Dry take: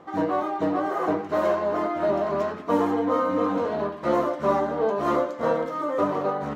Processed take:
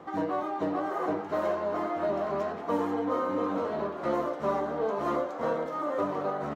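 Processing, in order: frequency-shifting echo 421 ms, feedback 55%, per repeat +83 Hz, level -13 dB; three bands compressed up and down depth 40%; trim -6 dB

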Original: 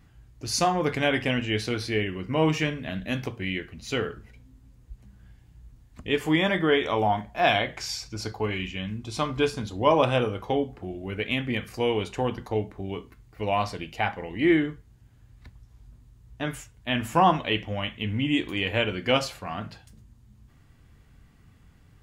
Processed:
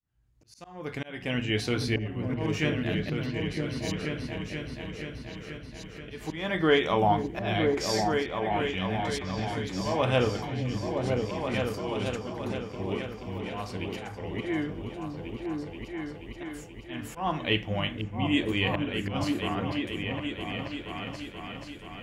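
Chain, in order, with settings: fade-in on the opening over 1.73 s; slow attack 373 ms; delay with an opening low-pass 480 ms, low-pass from 200 Hz, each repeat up 2 oct, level 0 dB

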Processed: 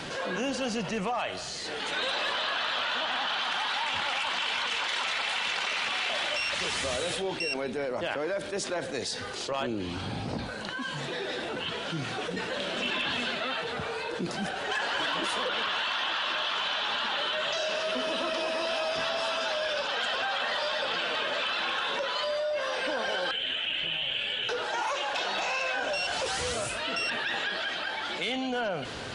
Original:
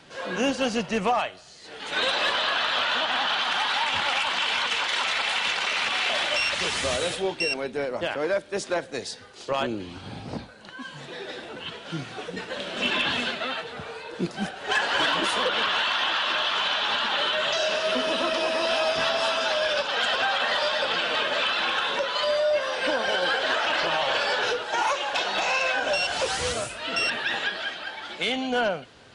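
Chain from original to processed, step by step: 23.31–24.49 s: FFT filter 130 Hz 0 dB, 1.1 kHz -23 dB, 3.1 kHz +5 dB, 5 kHz -27 dB, 7.4 kHz -11 dB; level flattener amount 70%; trim -8.5 dB

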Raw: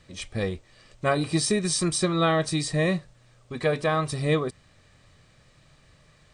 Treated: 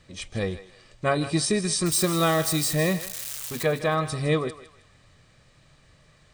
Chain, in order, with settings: 1.86–3.63 s: zero-crossing glitches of -22.5 dBFS; thinning echo 158 ms, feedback 35%, high-pass 640 Hz, level -13 dB

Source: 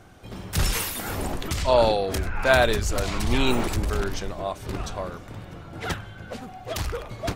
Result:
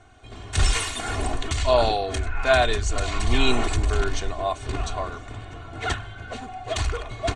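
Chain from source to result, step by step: elliptic low-pass 8.6 kHz, stop band 80 dB; peaking EQ 340 Hz -7 dB 0.48 oct; band-stop 5.1 kHz, Q 6.8; comb 2.8 ms, depth 73%; level rider gain up to 5.5 dB; trim -3 dB

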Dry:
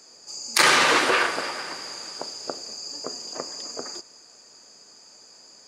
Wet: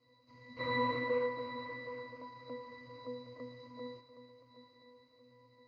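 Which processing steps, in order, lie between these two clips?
CVSD coder 32 kbps; pitch-class resonator B, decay 0.56 s; shuffle delay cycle 1024 ms, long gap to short 3:1, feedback 35%, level -13 dB; trim +7 dB

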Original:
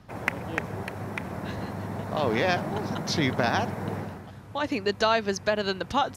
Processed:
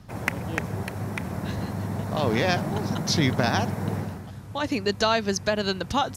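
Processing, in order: tone controls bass +6 dB, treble +7 dB

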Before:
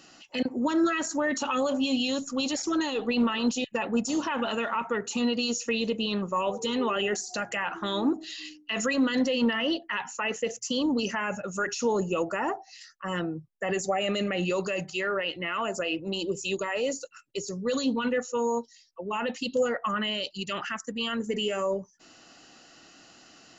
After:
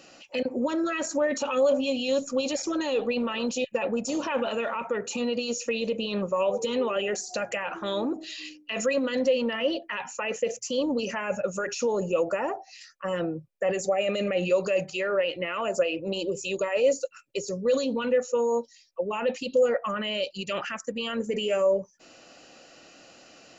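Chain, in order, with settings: peak limiter -23 dBFS, peak gain reduction 7.5 dB; small resonant body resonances 540/2400 Hz, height 12 dB, ringing for 25 ms

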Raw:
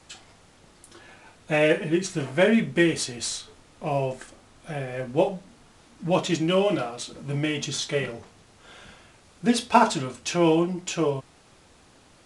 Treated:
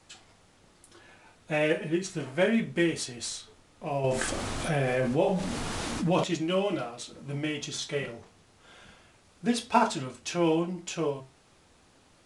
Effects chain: flange 0.3 Hz, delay 8.8 ms, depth 3.4 ms, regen -75%; 4.04–6.24 s: level flattener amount 70%; trim -1 dB

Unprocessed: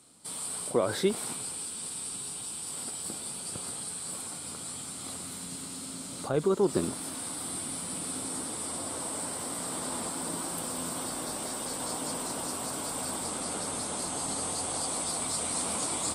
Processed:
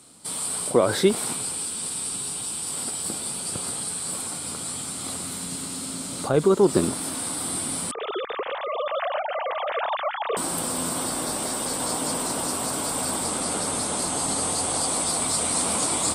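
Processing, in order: 7.91–10.37 s: formants replaced by sine waves; trim +7.5 dB

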